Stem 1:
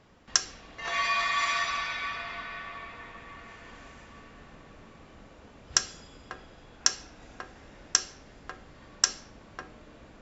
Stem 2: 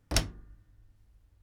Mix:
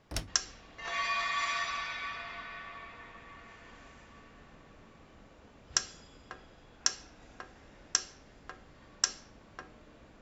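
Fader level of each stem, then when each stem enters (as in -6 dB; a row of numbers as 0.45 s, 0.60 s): -5.0 dB, -9.0 dB; 0.00 s, 0.00 s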